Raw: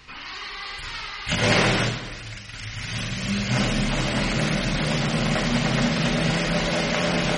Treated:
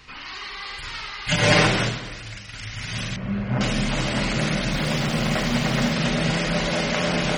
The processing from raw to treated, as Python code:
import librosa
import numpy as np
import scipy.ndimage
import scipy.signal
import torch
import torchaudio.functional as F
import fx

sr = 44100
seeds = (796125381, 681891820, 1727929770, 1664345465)

y = fx.comb(x, sr, ms=6.7, depth=0.85, at=(1.27, 1.67))
y = fx.lowpass(y, sr, hz=1300.0, slope=12, at=(3.16, 3.61))
y = fx.dmg_noise_colour(y, sr, seeds[0], colour='pink', level_db=-45.0, at=(4.71, 5.92), fade=0.02)